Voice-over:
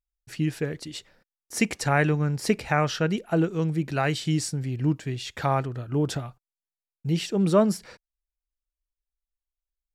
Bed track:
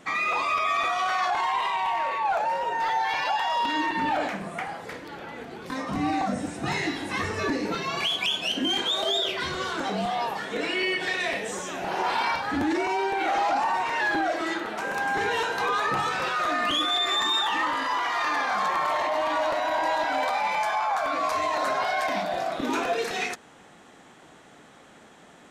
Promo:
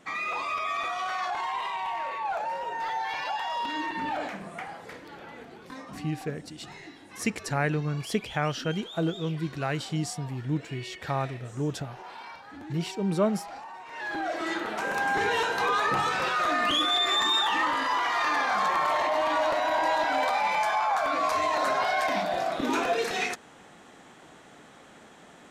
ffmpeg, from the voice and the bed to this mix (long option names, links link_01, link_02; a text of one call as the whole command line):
ffmpeg -i stem1.wav -i stem2.wav -filter_complex "[0:a]adelay=5650,volume=-5dB[link_01];[1:a]volume=12dB,afade=type=out:start_time=5.34:duration=0.79:silence=0.251189,afade=type=in:start_time=13.86:duration=0.83:silence=0.133352[link_02];[link_01][link_02]amix=inputs=2:normalize=0" out.wav